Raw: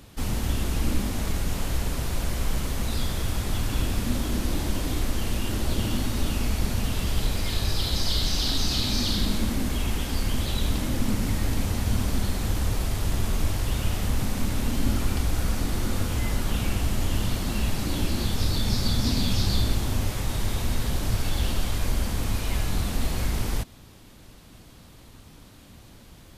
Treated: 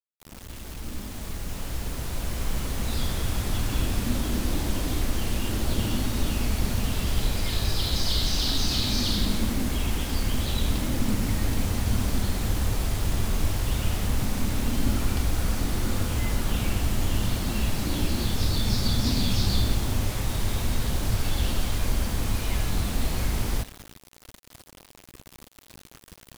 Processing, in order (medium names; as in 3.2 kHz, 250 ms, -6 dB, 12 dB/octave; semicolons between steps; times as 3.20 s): fade-in on the opening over 3.09 s; spring tank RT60 1.5 s, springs 43/56 ms, chirp 35 ms, DRR 19.5 dB; bit crusher 7-bit